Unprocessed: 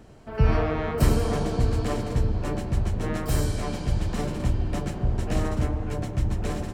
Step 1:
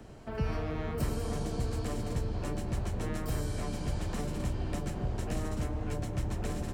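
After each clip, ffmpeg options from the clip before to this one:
-filter_complex "[0:a]acrossover=split=84|330|2700|6500[a][b][c][d][e];[a]acompressor=threshold=-35dB:ratio=4[f];[b]acompressor=threshold=-37dB:ratio=4[g];[c]acompressor=threshold=-41dB:ratio=4[h];[d]acompressor=threshold=-55dB:ratio=4[i];[e]acompressor=threshold=-50dB:ratio=4[j];[f][g][h][i][j]amix=inputs=5:normalize=0"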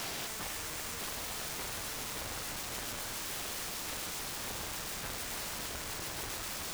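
-filter_complex "[0:a]asplit=2[a][b];[b]highpass=f=720:p=1,volume=43dB,asoftclip=type=tanh:threshold=-19.5dB[c];[a][c]amix=inputs=2:normalize=0,lowpass=f=1.6k:p=1,volume=-6dB,aeval=exprs='(mod(35.5*val(0)+1,2)-1)/35.5':c=same,volume=-3dB"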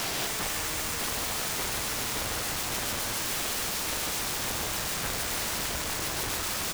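-af "aecho=1:1:148:0.473,volume=7.5dB"

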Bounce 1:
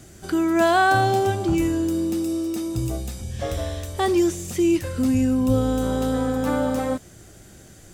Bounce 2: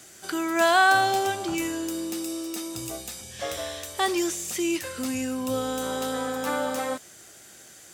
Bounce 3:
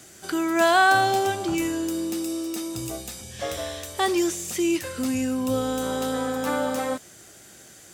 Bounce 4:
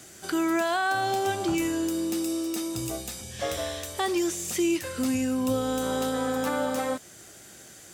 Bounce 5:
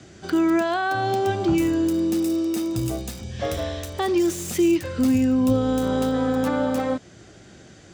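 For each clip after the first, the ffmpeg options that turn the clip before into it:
-af "highpass=f=1.2k:p=1,volume=3.5dB"
-af "lowshelf=f=410:g=6"
-af "alimiter=limit=-17.5dB:level=0:latency=1:release=277"
-filter_complex "[0:a]lowshelf=f=400:g=11,acrossover=split=290|650|6300[a][b][c][d];[d]acrusher=bits=5:mix=0:aa=0.000001[e];[a][b][c][e]amix=inputs=4:normalize=0"

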